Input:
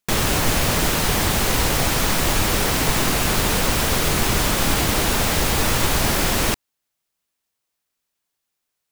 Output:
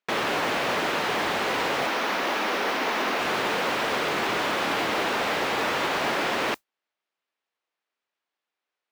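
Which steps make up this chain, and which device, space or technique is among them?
1.87–3.19 elliptic band-pass 200–6300 Hz; carbon microphone (BPF 360–2900 Hz; soft clip -16.5 dBFS, distortion -22 dB; modulation noise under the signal 22 dB)

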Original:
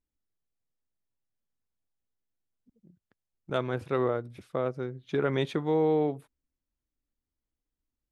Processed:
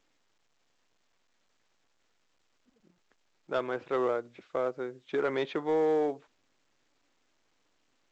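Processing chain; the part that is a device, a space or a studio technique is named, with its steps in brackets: telephone (BPF 360–3200 Hz; soft clip -21.5 dBFS, distortion -20 dB; gain +2 dB; A-law 128 kbps 16000 Hz)

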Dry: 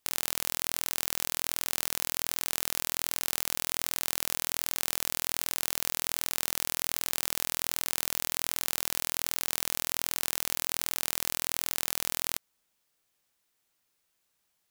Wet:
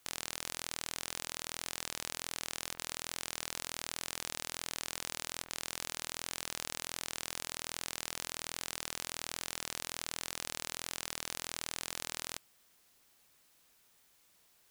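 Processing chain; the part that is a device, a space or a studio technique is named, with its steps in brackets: worn cassette (LPF 9100 Hz 12 dB/oct; wow and flutter; level dips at 2.74/5.44, 46 ms -6 dB; white noise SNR 25 dB); gain -5.5 dB

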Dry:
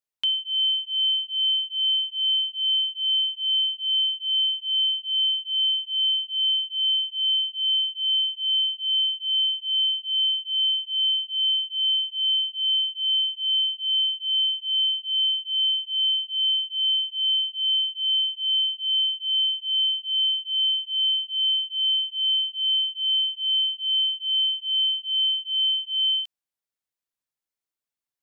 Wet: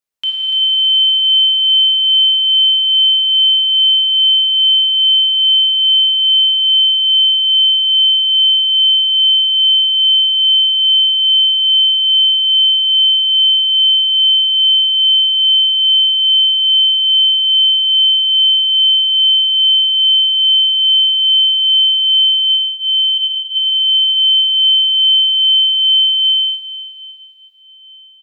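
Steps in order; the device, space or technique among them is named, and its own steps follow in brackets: 22.5–23.18 steep high-pass 2900 Hz 72 dB/oct; cave (echo 0.291 s -8.5 dB; reverb RT60 5.1 s, pre-delay 16 ms, DRR -4 dB); gain +3.5 dB

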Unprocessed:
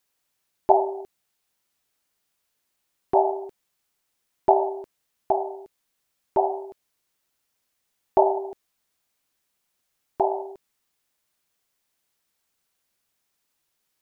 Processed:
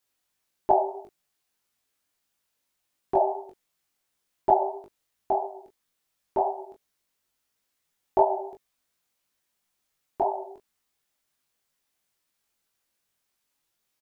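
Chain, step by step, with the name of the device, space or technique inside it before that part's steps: double-tracked vocal (doubler 19 ms -6 dB; chorus 2.9 Hz, delay 19.5 ms, depth 3.4 ms)

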